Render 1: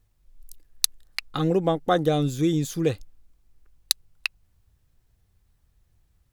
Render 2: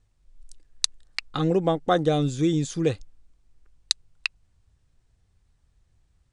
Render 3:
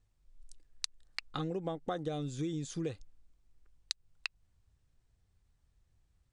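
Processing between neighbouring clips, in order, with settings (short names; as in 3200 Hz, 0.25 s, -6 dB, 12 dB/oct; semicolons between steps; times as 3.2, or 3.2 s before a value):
steep low-pass 9500 Hz 72 dB/oct
compressor 6:1, threshold -26 dBFS, peak gain reduction 10 dB; gain -7 dB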